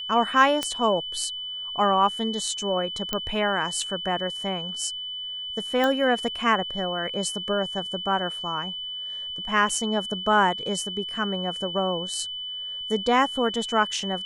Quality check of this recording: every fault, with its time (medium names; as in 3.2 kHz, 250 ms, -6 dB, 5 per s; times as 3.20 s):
whine 3 kHz -31 dBFS
0.63 s: pop -11 dBFS
3.13 s: pop -10 dBFS
5.84 s: pop -12 dBFS
9.69 s: dropout 4.1 ms